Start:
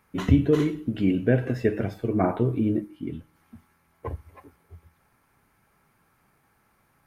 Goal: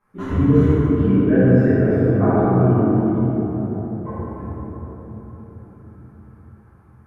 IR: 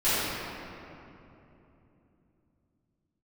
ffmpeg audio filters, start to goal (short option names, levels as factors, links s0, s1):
-filter_complex "[0:a]highshelf=f=1900:t=q:w=1.5:g=-8[s0];[1:a]atrim=start_sample=2205,asetrate=26460,aresample=44100[s1];[s0][s1]afir=irnorm=-1:irlink=0,volume=0.224"